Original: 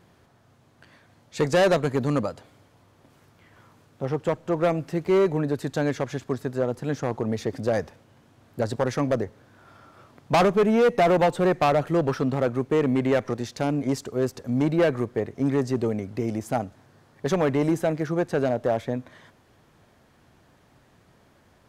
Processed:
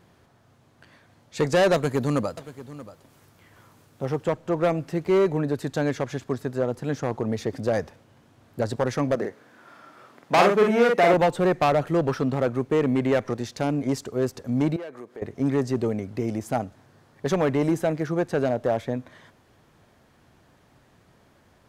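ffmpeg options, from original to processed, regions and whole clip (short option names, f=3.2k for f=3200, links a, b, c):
-filter_complex "[0:a]asettb=1/sr,asplit=3[a][b][c];[a]atrim=end=1.744[d];[b]atrim=start=1.74:end=4.24,asetpts=PTS-STARTPTS,afade=t=in:d=0.004:c=qsin,afade=t=out:st=2.496:d=0.004:c=qsin,highshelf=f=7.4k:g=9.5,aecho=1:1:631:0.158,atrim=end_sample=110250[e];[c]atrim=start=4.236[f];[d][e]acrossfade=d=0.004:c1=hsin:c2=qsin[g];[g][f]acrossfade=d=0.004:c1=qsin:c2=hsin,asettb=1/sr,asplit=3[h][i][j];[h]atrim=end=9.154[k];[i]atrim=start=9.15:end=11.14,asetpts=PTS-STARTPTS,afade=t=in:d=0.004:c=qsin,afade=t=out:st=1.986:d=0.004:c=qsin,highpass=220,equalizer=f=1.8k:t=o:w=0.79:g=4,asplit=2[l][m];[m]adelay=47,volume=-3dB[n];[l][n]amix=inputs=2:normalize=0,atrim=end_sample=87759[o];[j]atrim=start=11.136[p];[k][o]acrossfade=d=0.004:c1=hsin:c2=qsin[q];[q][p]acrossfade=d=0.004:c1=qsin:c2=hsin,asettb=1/sr,asplit=3[r][s][t];[r]atrim=end=14.764[u];[s]atrim=start=14.76:end=15.22,asetpts=PTS-STARTPTS,afade=t=in:d=0.004:c=qsin,afade=t=out:st=0.456:d=0.004:c=qsin,highpass=290,acompressor=threshold=-41dB:ratio=2.5:attack=3.2:release=140:knee=1:detection=peak[v];[t]atrim=start=15.216[w];[u][v]acrossfade=d=0.004:c1=hsin:c2=qsin[x];[x][w]acrossfade=d=0.004:c1=qsin:c2=hsin"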